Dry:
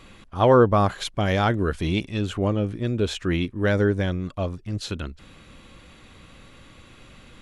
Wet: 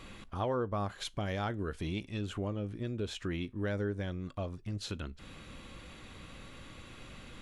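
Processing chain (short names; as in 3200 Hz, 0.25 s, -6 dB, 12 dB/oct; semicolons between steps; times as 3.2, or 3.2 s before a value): compressor 2.5:1, threshold -37 dBFS, peak gain reduction 17 dB; resonator 51 Hz, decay 0.2 s, harmonics all, mix 30%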